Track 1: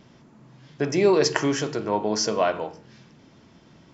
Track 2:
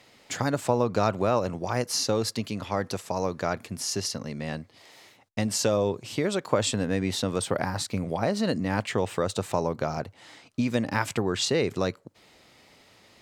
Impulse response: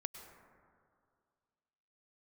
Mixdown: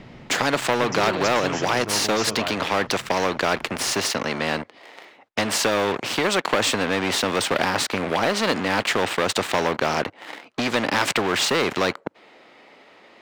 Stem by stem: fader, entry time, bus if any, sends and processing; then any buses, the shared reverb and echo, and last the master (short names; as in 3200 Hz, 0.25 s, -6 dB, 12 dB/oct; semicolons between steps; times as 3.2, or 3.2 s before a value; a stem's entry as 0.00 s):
-11.5 dB, 0.00 s, no send, tilt -2.5 dB/oct
-0.5 dB, 0.00 s, no send, high shelf 8800 Hz -9.5 dB; sample leveller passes 3; three-band isolator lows -23 dB, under 230 Hz, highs -14 dB, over 3100 Hz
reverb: off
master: spectral compressor 2:1